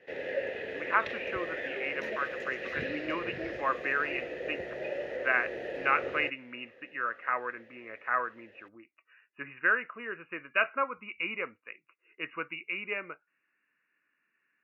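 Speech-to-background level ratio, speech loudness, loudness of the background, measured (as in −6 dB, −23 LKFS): 4.0 dB, −33.0 LKFS, −37.0 LKFS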